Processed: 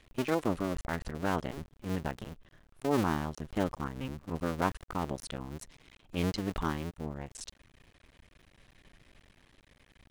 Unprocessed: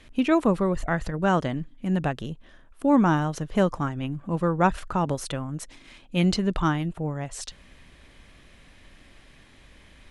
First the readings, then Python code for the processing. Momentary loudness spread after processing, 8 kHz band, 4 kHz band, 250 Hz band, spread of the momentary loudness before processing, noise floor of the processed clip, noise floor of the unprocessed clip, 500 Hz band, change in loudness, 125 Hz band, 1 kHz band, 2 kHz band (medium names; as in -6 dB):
14 LU, -7.0 dB, -7.5 dB, -10.5 dB, 14 LU, -66 dBFS, -53 dBFS, -8.5 dB, -9.5 dB, -10.0 dB, -9.0 dB, -8.0 dB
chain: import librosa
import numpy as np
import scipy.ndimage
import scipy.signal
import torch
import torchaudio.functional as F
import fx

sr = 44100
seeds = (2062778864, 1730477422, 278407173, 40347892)

y = fx.cycle_switch(x, sr, every=2, mode='muted')
y = y * 10.0 ** (-6.5 / 20.0)